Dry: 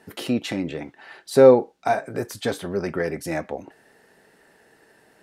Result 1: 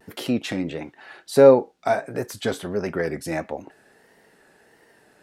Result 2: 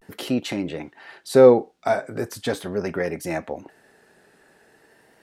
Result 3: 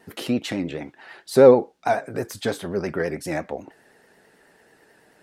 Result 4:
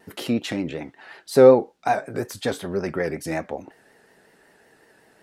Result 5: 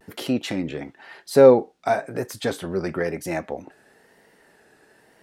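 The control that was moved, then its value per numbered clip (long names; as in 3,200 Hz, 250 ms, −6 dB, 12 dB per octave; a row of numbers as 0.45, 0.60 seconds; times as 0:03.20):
pitch vibrato, speed: 1.5, 0.41, 9.2, 5.4, 1 Hertz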